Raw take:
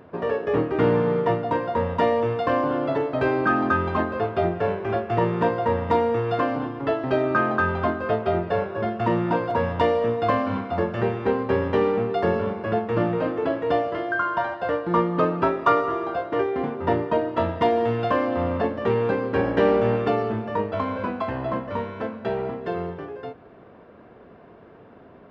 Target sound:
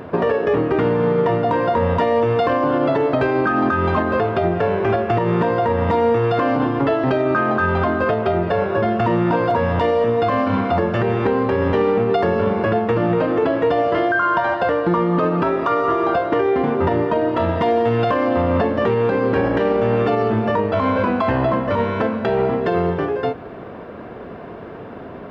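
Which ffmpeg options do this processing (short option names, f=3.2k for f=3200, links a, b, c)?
-af "acompressor=threshold=-28dB:ratio=3,alimiter=level_in=22.5dB:limit=-1dB:release=50:level=0:latency=1,volume=-8.5dB"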